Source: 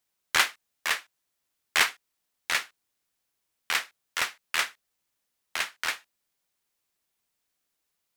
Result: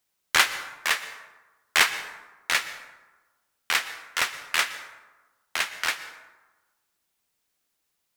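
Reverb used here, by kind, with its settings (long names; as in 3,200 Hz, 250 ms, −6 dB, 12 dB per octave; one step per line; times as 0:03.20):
dense smooth reverb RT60 1.2 s, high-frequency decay 0.5×, pre-delay 105 ms, DRR 12.5 dB
level +3 dB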